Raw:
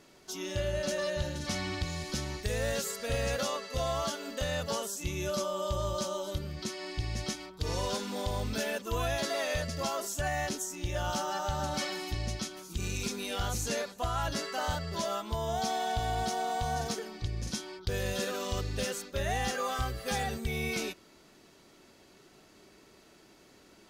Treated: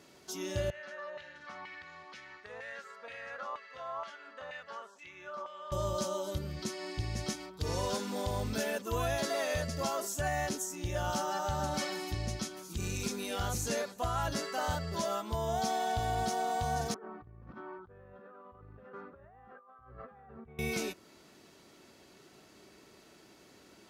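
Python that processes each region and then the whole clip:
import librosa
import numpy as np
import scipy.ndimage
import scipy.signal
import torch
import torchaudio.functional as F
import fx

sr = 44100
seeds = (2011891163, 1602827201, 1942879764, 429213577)

y = fx.chain(x, sr, fx.high_shelf(hz=5600.0, db=-10.0),
    fx.filter_lfo_bandpass(shape='saw_down', hz=2.1, low_hz=990.0, high_hz=2300.0, q=2.2), at=(0.7, 5.72))
y = fx.chain(y, sr, fx.ladder_lowpass(hz=1400.0, resonance_pct=55),
    fx.over_compress(threshold_db=-52.0, ratio=-1.0), at=(16.94, 20.59))
y = scipy.signal.sosfilt(scipy.signal.butter(2, 59.0, 'highpass', fs=sr, output='sos'), y)
y = fx.dynamic_eq(y, sr, hz=3300.0, q=0.92, threshold_db=-51.0, ratio=4.0, max_db=-4)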